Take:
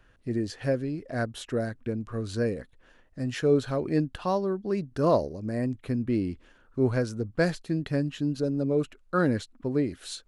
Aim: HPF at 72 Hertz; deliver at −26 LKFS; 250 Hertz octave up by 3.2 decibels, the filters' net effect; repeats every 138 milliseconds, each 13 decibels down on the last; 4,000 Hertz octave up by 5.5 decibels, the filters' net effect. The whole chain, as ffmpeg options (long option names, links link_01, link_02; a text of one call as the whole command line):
ffmpeg -i in.wav -af "highpass=72,equalizer=frequency=250:width_type=o:gain=4,equalizer=frequency=4000:width_type=o:gain=6.5,aecho=1:1:138|276|414:0.224|0.0493|0.0108,volume=0.5dB" out.wav